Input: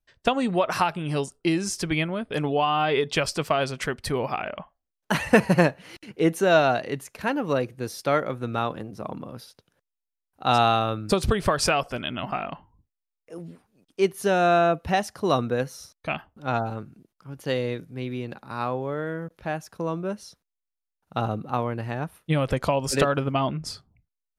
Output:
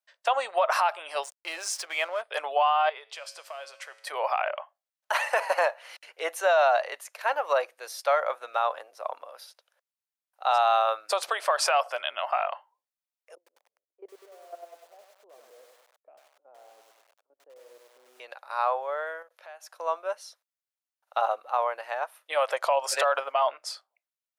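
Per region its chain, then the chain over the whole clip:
1.23–2.22 s: transient shaper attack -4 dB, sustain +4 dB + hysteresis with a dead band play -38.5 dBFS
2.89–4.07 s: compression 4:1, threshold -28 dBFS + feedback comb 110 Hz, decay 1.3 s
13.35–18.20 s: level held to a coarse grid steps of 18 dB + Butterworth band-pass 240 Hz, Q 0.9 + bit-crushed delay 99 ms, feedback 55%, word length 9-bit, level -4.5 dB
19.22–19.67 s: band-stop 810 Hz, Q 24 + compression 8:1, threshold -39 dBFS
whole clip: elliptic high-pass 570 Hz, stop band 80 dB; dynamic bell 900 Hz, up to +7 dB, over -37 dBFS, Q 0.82; peak limiter -14 dBFS

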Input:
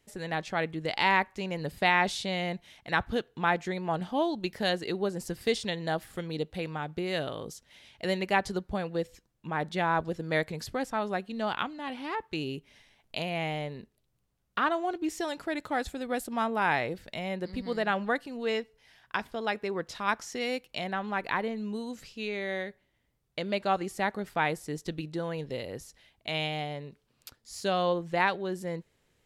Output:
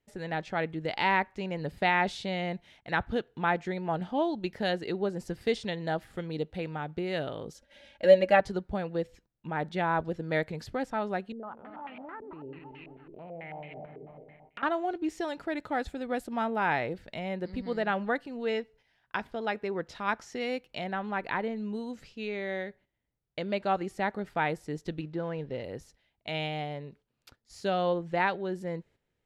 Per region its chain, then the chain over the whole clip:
7.54–8.40 s: comb 3.6 ms, depth 74% + small resonant body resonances 560/1600 Hz, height 12 dB, ringing for 50 ms
11.32–14.63 s: backward echo that repeats 127 ms, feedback 63%, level -8.5 dB + compression 3:1, threshold -46 dBFS + step-sequenced low-pass 9.1 Hz 410–2500 Hz
25.01–25.64 s: CVSD coder 64 kbps + low-pass 3.2 kHz
whole clip: low-pass 2.5 kHz 6 dB/octave; band-stop 1.1 kHz, Q 12; gate -57 dBFS, range -9 dB

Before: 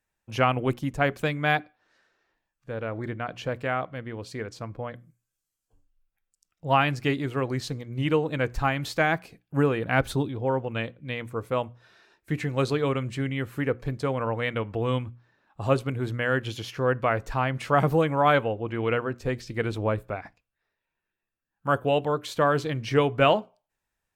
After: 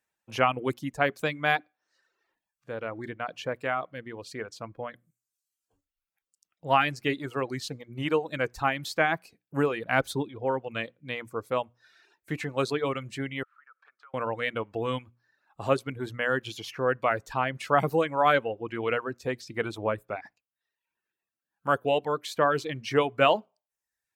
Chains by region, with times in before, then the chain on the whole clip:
13.43–14.14 s: ladder band-pass 1.4 kHz, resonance 80% + compression 4:1, threshold -52 dBFS
whole clip: reverb removal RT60 0.69 s; high-pass 270 Hz 6 dB/octave

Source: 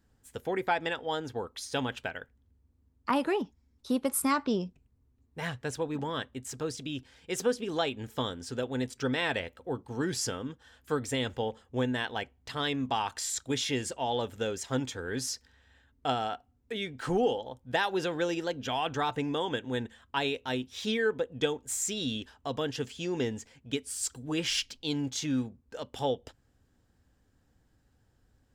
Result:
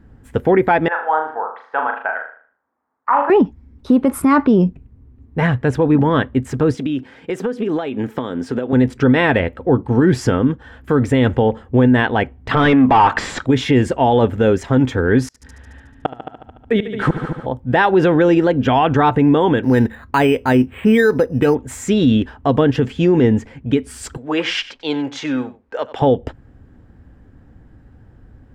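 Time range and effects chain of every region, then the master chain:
0.88–3.30 s: Butterworth band-pass 1.1 kHz, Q 1.3 + flutter echo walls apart 6.6 m, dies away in 0.47 s
6.74–8.73 s: high-pass 200 Hz + compression 12:1, threshold -37 dBFS
12.51–13.46 s: overdrive pedal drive 21 dB, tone 3.6 kHz, clips at -17 dBFS + distance through air 56 m
15.27–17.46 s: inverted gate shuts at -23 dBFS, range -31 dB + multi-head delay 73 ms, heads all three, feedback 47%, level -14 dB
19.63–21.55 s: treble shelf 2.5 kHz +10 dB + careless resampling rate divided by 8×, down filtered, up hold
24.17–26.02 s: three-band isolator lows -22 dB, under 440 Hz, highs -18 dB, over 8 kHz + delay 93 ms -16.5 dB
whole clip: FFT filter 290 Hz 0 dB, 490 Hz -4 dB, 2 kHz -7 dB, 4.2 kHz -20 dB, 6.5 kHz -24 dB; loudness maximiser +27.5 dB; trim -4 dB

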